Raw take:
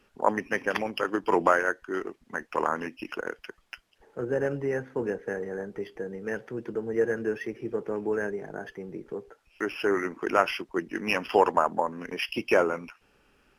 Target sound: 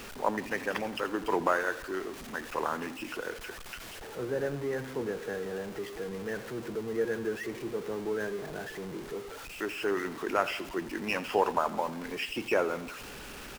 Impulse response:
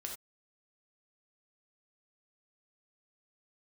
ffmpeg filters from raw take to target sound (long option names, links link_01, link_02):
-af "aeval=exprs='val(0)+0.5*0.0237*sgn(val(0))':channel_layout=same,aecho=1:1:84|168|252|336|420:0.15|0.0853|0.0486|0.0277|0.0158,volume=-6dB"